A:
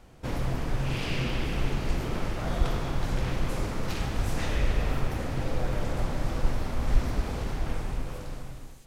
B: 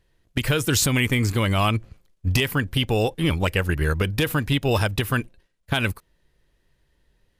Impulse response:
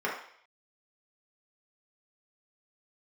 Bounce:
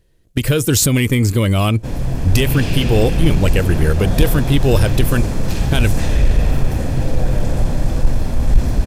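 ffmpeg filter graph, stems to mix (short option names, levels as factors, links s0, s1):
-filter_complex "[0:a]aecho=1:1:1.2:0.31,dynaudnorm=f=130:g=11:m=1.78,adelay=1600,volume=1.06[s0];[1:a]volume=1.19[s1];[s0][s1]amix=inputs=2:normalize=0,firequalizer=gain_entry='entry(510,0);entry(850,-8);entry(7700,0)':delay=0.05:min_phase=1,acontrast=63"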